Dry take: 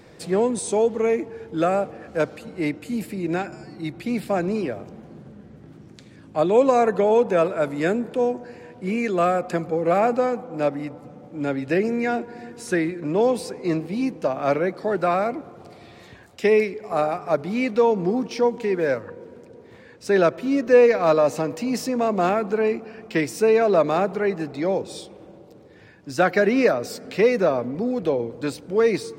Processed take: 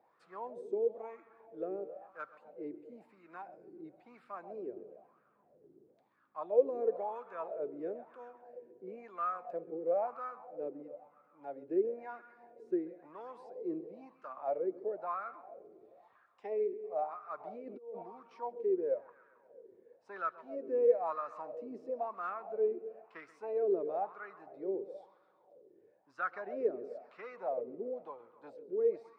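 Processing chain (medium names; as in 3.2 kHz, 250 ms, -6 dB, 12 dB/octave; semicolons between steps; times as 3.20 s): bucket-brigade echo 133 ms, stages 4096, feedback 68%, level -15.5 dB; 17.40–18.03 s: compressor with a negative ratio -24 dBFS, ratio -0.5; wah-wah 1 Hz 370–1300 Hz, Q 7.2; trim -6.5 dB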